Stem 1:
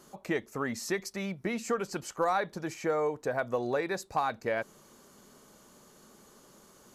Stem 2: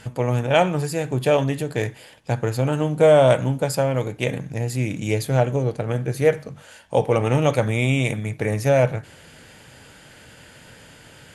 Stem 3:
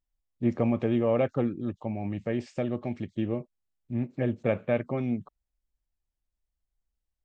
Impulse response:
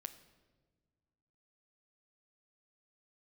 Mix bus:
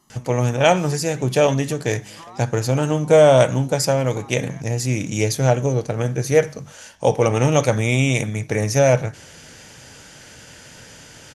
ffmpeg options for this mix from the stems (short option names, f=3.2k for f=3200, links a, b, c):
-filter_complex "[0:a]aecho=1:1:1:0.85,acompressor=threshold=-36dB:ratio=3,volume=-6.5dB[a];[1:a]equalizer=f=5.9k:t=o:w=0.43:g=14,adelay=100,volume=2dB[b];[2:a]acompressor=threshold=-30dB:ratio=6,volume=-13dB[c];[a][b][c]amix=inputs=3:normalize=0"